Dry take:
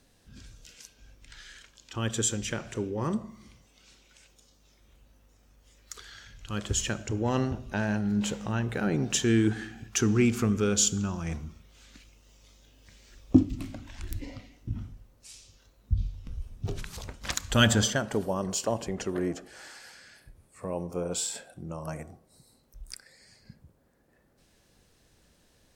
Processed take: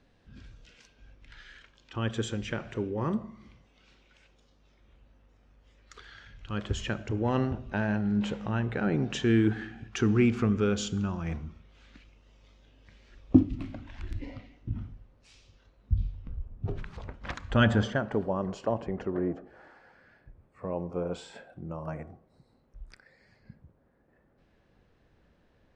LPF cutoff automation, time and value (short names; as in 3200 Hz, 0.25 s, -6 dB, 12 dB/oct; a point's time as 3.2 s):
16.08 s 2900 Hz
16.49 s 1100 Hz
16.8 s 1900 Hz
18.75 s 1900 Hz
19.4 s 1100 Hz
19.91 s 1100 Hz
20.7 s 2100 Hz